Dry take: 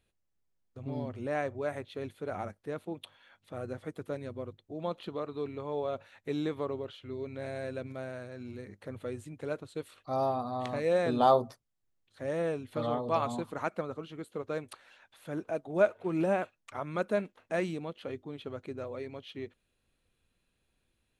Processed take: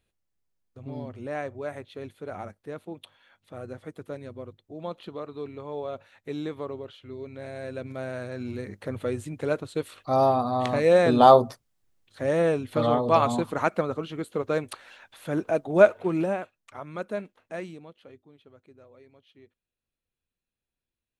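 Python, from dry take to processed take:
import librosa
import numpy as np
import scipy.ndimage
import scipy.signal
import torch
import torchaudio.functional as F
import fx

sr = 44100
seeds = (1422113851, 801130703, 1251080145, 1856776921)

y = fx.gain(x, sr, db=fx.line((7.52, 0.0), (8.32, 9.0), (15.99, 9.0), (16.42, -2.0), (17.39, -2.0), (18.41, -14.0)))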